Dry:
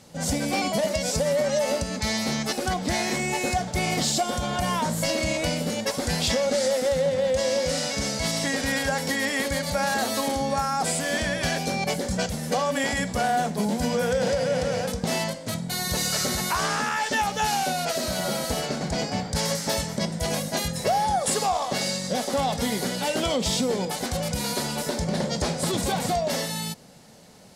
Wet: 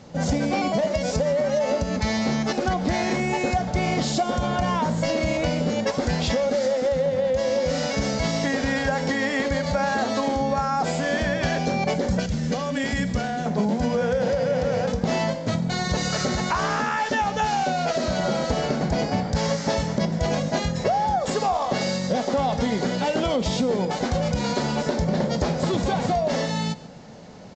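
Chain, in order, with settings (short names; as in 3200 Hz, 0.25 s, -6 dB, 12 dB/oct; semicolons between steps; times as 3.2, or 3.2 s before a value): high shelf 2500 Hz -10.5 dB; on a send: echo 0.141 s -20 dB; on the sum: compressor 2:1, threshold -28 dBFS, peak gain reduction 5 dB; 12.19–13.46 bell 790 Hz -10.5 dB 1.9 oct; in parallel at +1 dB: vocal rider; on the sum: downsampling 16000 Hz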